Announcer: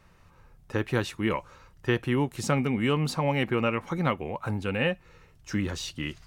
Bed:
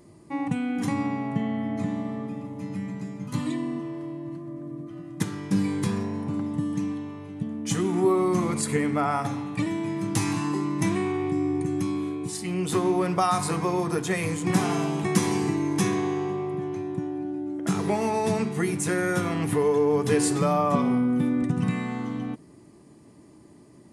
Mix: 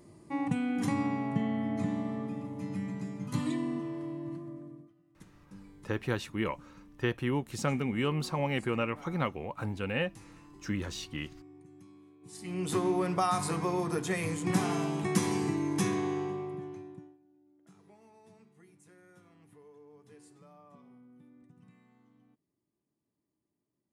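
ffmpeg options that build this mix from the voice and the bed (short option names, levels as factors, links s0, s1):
-filter_complex "[0:a]adelay=5150,volume=0.562[s0];[1:a]volume=8.41,afade=t=out:st=4.33:d=0.61:silence=0.0630957,afade=t=in:st=12.21:d=0.45:silence=0.0794328,afade=t=out:st=16.18:d=1:silence=0.0375837[s1];[s0][s1]amix=inputs=2:normalize=0"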